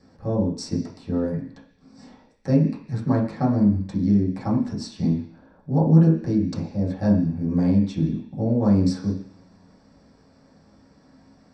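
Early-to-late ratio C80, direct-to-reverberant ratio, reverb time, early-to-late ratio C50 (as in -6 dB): 10.0 dB, -7.0 dB, 0.50 s, 7.0 dB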